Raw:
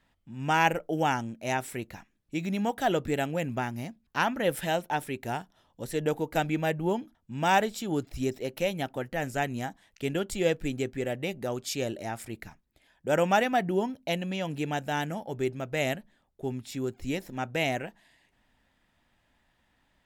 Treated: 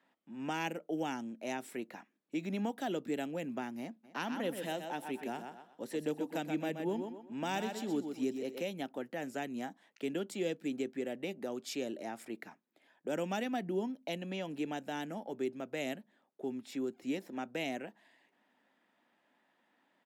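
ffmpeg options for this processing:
-filter_complex "[0:a]asplit=3[s0][s1][s2];[s0]afade=t=out:st=4.03:d=0.02[s3];[s1]aecho=1:1:125|250|375:0.398|0.104|0.0269,afade=t=in:st=4.03:d=0.02,afade=t=out:st=8.6:d=0.02[s4];[s2]afade=t=in:st=8.6:d=0.02[s5];[s3][s4][s5]amix=inputs=3:normalize=0,highpass=f=230:w=0.5412,highpass=f=230:w=1.3066,highshelf=f=3200:g=-11.5,acrossover=split=290|3000[s6][s7][s8];[s7]acompressor=threshold=0.00794:ratio=3[s9];[s6][s9][s8]amix=inputs=3:normalize=0"

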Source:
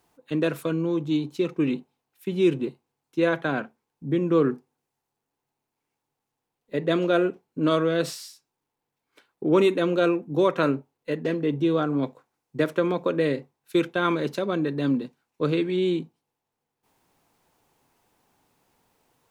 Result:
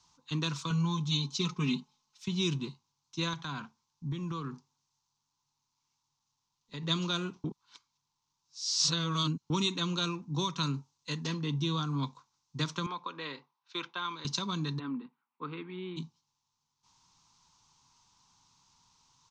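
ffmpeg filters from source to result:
-filter_complex "[0:a]asettb=1/sr,asplit=3[s0][s1][s2];[s0]atrim=end=0.704[s3];[s1]atrim=start=0.7:end=2.28,asetpts=PTS-STARTPTS,afade=t=in:d=0.004:c=qsin,afade=t=out:st=1.576:d=0.004:c=qsin,aecho=1:1:4.7:0.97,atrim=end_sample=69678[s4];[s2]atrim=start=2.276[s5];[s3][s4]acrossfade=d=0.004:c1=hsin:c2=qsin[s6];[s6][s5]acrossfade=d=0.004:c1=qsin:c2=hsin,asettb=1/sr,asplit=3[s7][s8][s9];[s7]atrim=end=3.334[s10];[s8]atrim=start=3.33:end=6.83,asetpts=PTS-STARTPTS,afade=t=in:d=0.004:c=qsin,afade=t=out:st=3.496:d=0.004:c=qsin,acompressor=threshold=0.0355:ratio=2.5:attack=3.2:release=140:knee=1:detection=peak[s11];[s9]atrim=start=6.826[s12];[s10][s11]acrossfade=d=0.004:c1=hsin:c2=qsin[s13];[s13][s12]acrossfade=d=0.004:c1=qsin:c2=hsin,asettb=1/sr,asplit=3[s14][s15][s16];[s14]atrim=end=10.744[s17];[s15]atrim=start=10.74:end=11.27,asetpts=PTS-STARTPTS,afade=t=in:d=0.004:c=qsin,afade=t=out:st=0.526:d=0.004:c=qsin,highshelf=f=6800:g=11.5[s18];[s16]atrim=start=11.266[s19];[s17][s18]acrossfade=d=0.004:c1=hsin:c2=qsin[s20];[s20][s19]acrossfade=d=0.004:c1=qsin:c2=hsin,asettb=1/sr,asplit=3[s21][s22][s23];[s21]atrim=end=12.864[s24];[s22]atrim=start=12.86:end=14.25,asetpts=PTS-STARTPTS,afade=t=in:d=0.004:c=qsin,afade=t=out:st=1.386:d=0.004:c=qsin,highpass=470,lowpass=2500[s25];[s23]atrim=start=14.246[s26];[s24][s25]acrossfade=d=0.004:c1=hsin:c2=qsin[s27];[s27][s26]acrossfade=d=0.004:c1=qsin:c2=hsin,asplit=3[s28][s29][s30];[s28]afade=t=out:st=14.78:d=0.02[s31];[s29]highpass=f=240:w=0.5412,highpass=f=240:w=1.3066,equalizer=f=330:t=q:w=4:g=-5,equalizer=f=600:t=q:w=4:g=-10,equalizer=f=1000:t=q:w=4:g=-6,equalizer=f=1600:t=q:w=4:g=-4,lowpass=f=2000:w=0.5412,lowpass=f=2000:w=1.3066,afade=t=in:st=14.78:d=0.02,afade=t=out:st=15.96:d=0.02[s32];[s30]afade=t=in:st=15.96:d=0.02[s33];[s31][s32][s33]amix=inputs=3:normalize=0,asplit=3[s34][s35][s36];[s34]atrim=end=7.442[s37];[s35]atrim=start=7.438:end=9.502,asetpts=PTS-STARTPTS,areverse[s38];[s36]atrim=start=9.498[s39];[s37][s38]acrossfade=d=0.004:c1=hsin:c2=hsin[s40];[s40][s39]acrossfade=d=0.004:c1=hsin:c2=hsin,firequalizer=gain_entry='entry(150,0);entry(310,-13);entry(590,-22);entry(970,5);entry(1700,-9);entry(3800,8);entry(6200,13);entry(11000,-27)':delay=0.05:min_phase=1,acrossover=split=340|3000[s41][s42][s43];[s42]acompressor=threshold=0.0158:ratio=6[s44];[s41][s44][s43]amix=inputs=3:normalize=0"

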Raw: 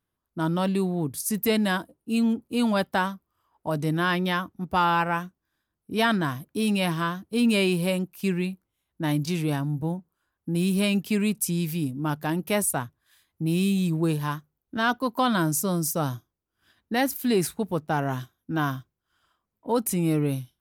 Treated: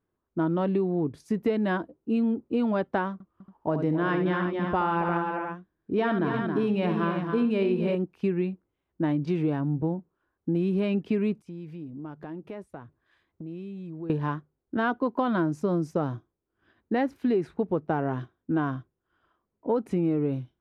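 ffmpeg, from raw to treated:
-filter_complex "[0:a]asettb=1/sr,asplit=3[s0][s1][s2];[s0]atrim=end=3.134[s3];[s1]atrim=start=3.13:end=7.95,asetpts=PTS-STARTPTS,afade=t=in:d=0.004:c=qsin,afade=t=out:st=4.816:d=0.004:c=qsin,aecho=1:1:71|271|350:0.398|0.355|0.299,atrim=end_sample=212562[s4];[s2]atrim=start=7.946[s5];[s3][s4]acrossfade=d=0.004:c1=hsin:c2=qsin[s6];[s6][s5]acrossfade=d=0.004:c1=qsin:c2=hsin,asettb=1/sr,asplit=3[s7][s8][s9];[s7]atrim=end=11.404[s10];[s8]atrim=start=11.4:end=14.1,asetpts=PTS-STARTPTS,afade=t=in:d=0.004:c=qsin,afade=t=out:st=2.696:d=0.004:c=qsin,acompressor=threshold=0.01:ratio=6:attack=3.2:release=140:knee=1:detection=peak[s11];[s9]atrim=start=14.096[s12];[s10][s11]acrossfade=d=0.004:c1=hsin:c2=qsin[s13];[s13][s12]acrossfade=d=0.004:c1=qsin:c2=hsin,lowpass=2000,equalizer=f=380:t=o:w=1.1:g=8,acompressor=threshold=0.0794:ratio=6"

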